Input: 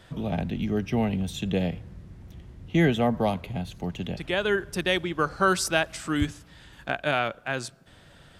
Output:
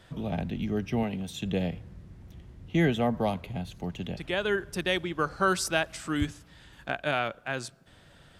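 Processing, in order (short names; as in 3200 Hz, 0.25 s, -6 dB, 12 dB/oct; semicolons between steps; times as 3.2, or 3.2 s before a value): 1.03–1.43 HPF 190 Hz 6 dB/oct; gain -3 dB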